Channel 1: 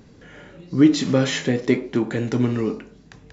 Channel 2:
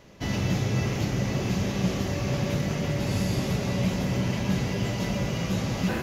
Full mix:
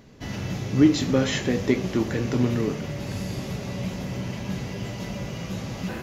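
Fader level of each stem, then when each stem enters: −3.0, −4.5 decibels; 0.00, 0.00 seconds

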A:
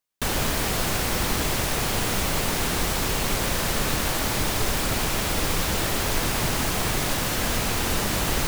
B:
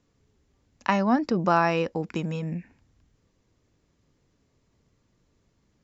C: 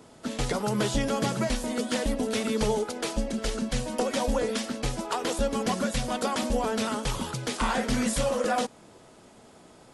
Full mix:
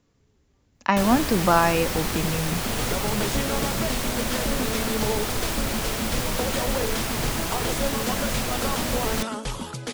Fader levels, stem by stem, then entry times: −3.0, +2.5, −1.0 decibels; 0.75, 0.00, 2.40 seconds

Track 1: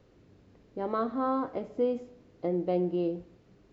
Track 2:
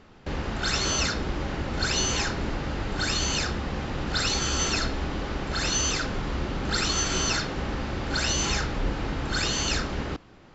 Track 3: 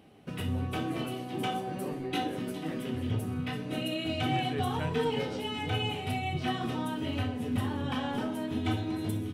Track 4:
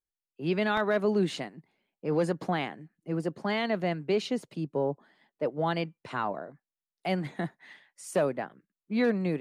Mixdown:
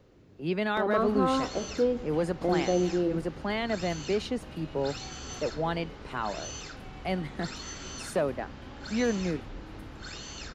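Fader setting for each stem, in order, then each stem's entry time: +2.0, −15.0, −18.5, −1.5 decibels; 0.00, 0.70, 0.70, 0.00 seconds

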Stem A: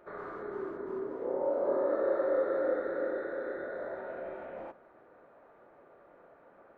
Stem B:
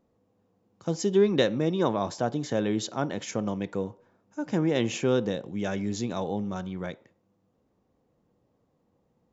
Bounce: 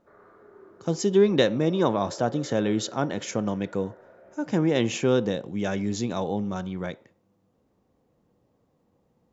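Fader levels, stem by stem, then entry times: −12.5, +2.5 decibels; 0.00, 0.00 seconds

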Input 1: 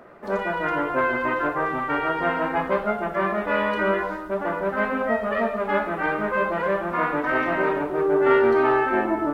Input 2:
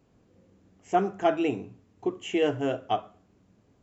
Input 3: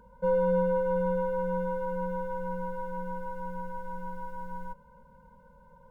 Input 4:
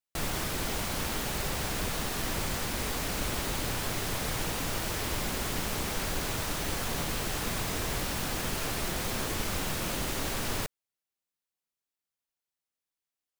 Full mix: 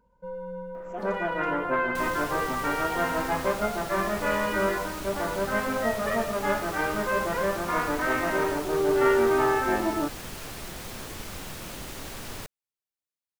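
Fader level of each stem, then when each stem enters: −3.5, −15.5, −11.5, −6.0 decibels; 0.75, 0.00, 0.00, 1.80 seconds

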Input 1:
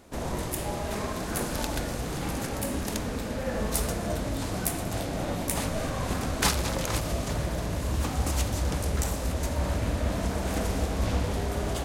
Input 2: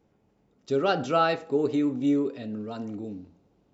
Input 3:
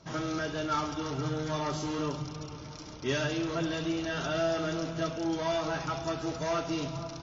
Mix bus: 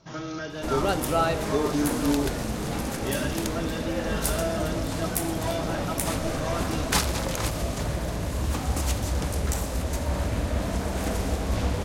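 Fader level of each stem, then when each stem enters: +1.0, −2.0, −1.0 decibels; 0.50, 0.00, 0.00 seconds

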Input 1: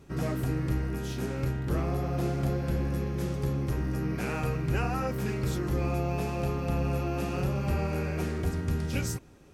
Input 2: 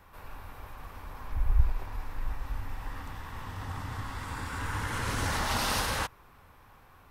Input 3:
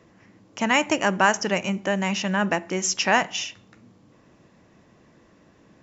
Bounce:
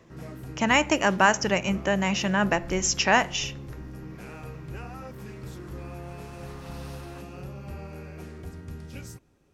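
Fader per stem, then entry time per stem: −10.0, −19.0, −0.5 decibels; 0.00, 1.15, 0.00 seconds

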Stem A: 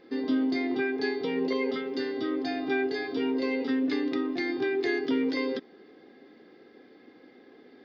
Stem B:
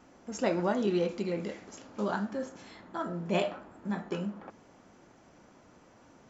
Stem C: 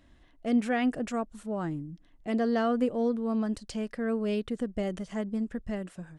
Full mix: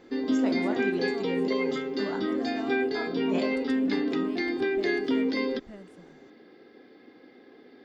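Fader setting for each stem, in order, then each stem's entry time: +1.0, −5.0, −12.0 decibels; 0.00, 0.00, 0.00 seconds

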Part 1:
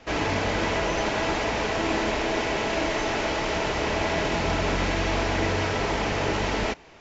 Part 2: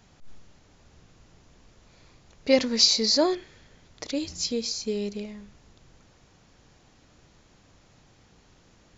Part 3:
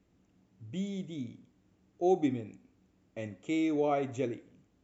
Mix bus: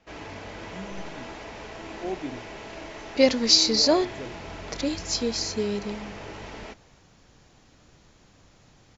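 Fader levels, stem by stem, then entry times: −14.0, +1.5, −5.5 decibels; 0.00, 0.70, 0.00 seconds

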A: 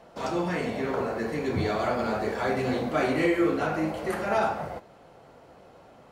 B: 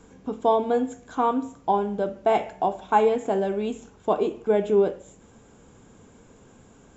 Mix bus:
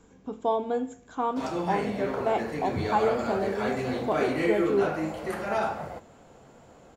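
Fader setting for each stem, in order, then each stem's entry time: −2.5, −5.5 decibels; 1.20, 0.00 seconds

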